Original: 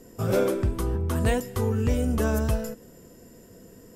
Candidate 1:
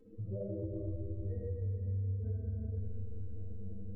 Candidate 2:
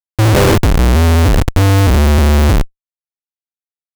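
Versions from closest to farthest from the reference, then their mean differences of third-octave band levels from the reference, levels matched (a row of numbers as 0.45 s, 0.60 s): 2, 1; 11.5 dB, 16.5 dB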